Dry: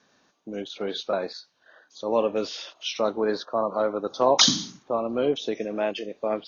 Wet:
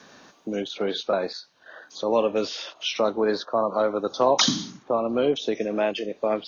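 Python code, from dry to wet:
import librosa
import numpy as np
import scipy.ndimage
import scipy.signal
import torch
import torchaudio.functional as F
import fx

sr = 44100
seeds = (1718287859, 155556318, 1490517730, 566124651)

y = fx.band_squash(x, sr, depth_pct=40)
y = y * librosa.db_to_amplitude(2.0)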